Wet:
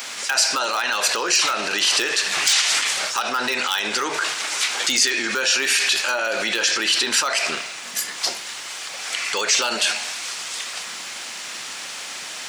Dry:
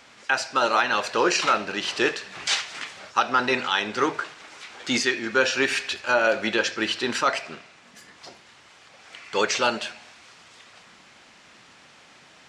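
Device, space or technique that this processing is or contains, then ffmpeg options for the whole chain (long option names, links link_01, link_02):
loud club master: -af "acompressor=threshold=-25dB:ratio=2.5,asoftclip=type=hard:threshold=-16.5dB,alimiter=level_in=28.5dB:limit=-1dB:release=50:level=0:latency=1,aemphasis=mode=production:type=riaa,volume=-14dB"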